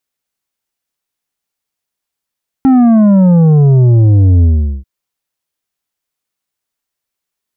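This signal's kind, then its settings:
bass drop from 270 Hz, over 2.19 s, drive 7.5 dB, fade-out 0.41 s, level −5 dB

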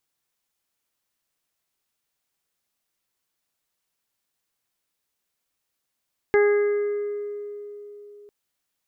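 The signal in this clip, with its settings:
harmonic partials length 1.95 s, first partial 412 Hz, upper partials −12.5/−18/−11/−13 dB, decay 3.80 s, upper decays 0.84/2.11/1.43/1.69 s, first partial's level −14 dB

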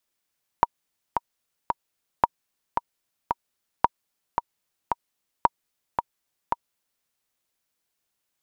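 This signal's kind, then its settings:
click track 112 BPM, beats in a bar 3, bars 4, 947 Hz, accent 6.5 dB −3 dBFS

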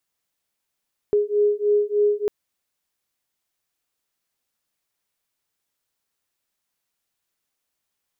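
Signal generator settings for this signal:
two tones that beat 413 Hz, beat 3.3 Hz, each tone −20 dBFS 1.15 s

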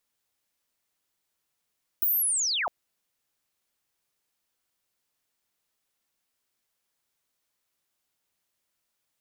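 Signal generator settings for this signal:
glide linear 16,000 Hz → 570 Hz −21 dBFS → −25.5 dBFS 0.66 s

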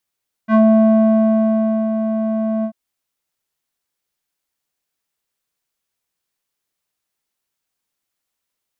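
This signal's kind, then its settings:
subtractive voice square A3 12 dB per octave, low-pass 640 Hz, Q 1.9, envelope 1.5 octaves, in 0.14 s, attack 63 ms, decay 1.35 s, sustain −9 dB, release 0.08 s, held 2.16 s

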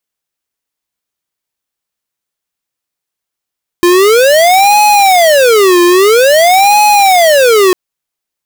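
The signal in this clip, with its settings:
siren wail 349–840 Hz 0.5 per second square −6 dBFS 3.90 s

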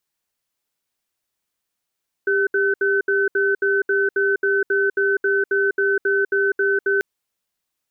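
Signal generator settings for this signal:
tone pair in a cadence 397 Hz, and 1,520 Hz, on 0.20 s, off 0.07 s, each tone −18.5 dBFS 4.74 s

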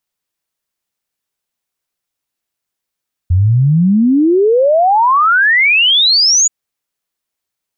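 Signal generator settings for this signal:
exponential sine sweep 85 Hz → 7,000 Hz 3.18 s −7 dBFS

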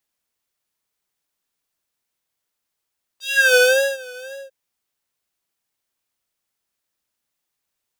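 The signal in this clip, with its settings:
subtractive patch with vibrato C5, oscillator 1 square, interval +19 semitones, sub −27 dB, noise −27 dB, filter highpass, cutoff 560 Hz, Q 3.8, filter envelope 3 octaves, filter decay 0.34 s, filter sustain 15%, attack 362 ms, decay 0.41 s, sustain −23 dB, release 0.18 s, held 1.12 s, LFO 1.9 Hz, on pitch 90 cents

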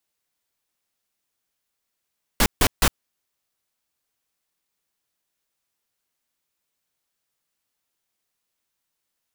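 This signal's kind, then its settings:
noise bursts pink, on 0.06 s, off 0.15 s, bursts 3, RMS −16.5 dBFS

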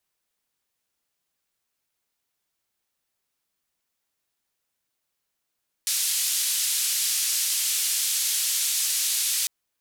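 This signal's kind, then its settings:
band-limited noise 3,400–12,000 Hz, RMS −25 dBFS 3.60 s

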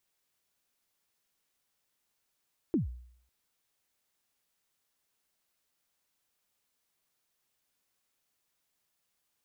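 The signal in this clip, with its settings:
synth kick length 0.55 s, from 370 Hz, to 61 Hz, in 133 ms, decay 0.64 s, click off, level −22 dB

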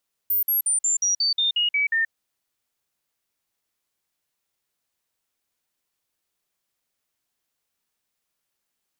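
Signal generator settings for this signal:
stepped sweep 14,500 Hz down, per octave 3, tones 10, 0.13 s, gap 0.05 s −18.5 dBFS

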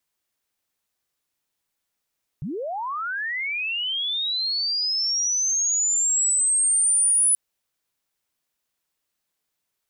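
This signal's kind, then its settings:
glide linear 120 Hz → 10,000 Hz −27 dBFS → −15.5 dBFS 4.93 s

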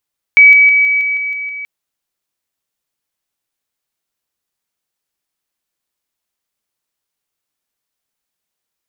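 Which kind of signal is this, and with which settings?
level staircase 2,280 Hz −1.5 dBFS, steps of −3 dB, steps 8, 0.16 s 0.00 s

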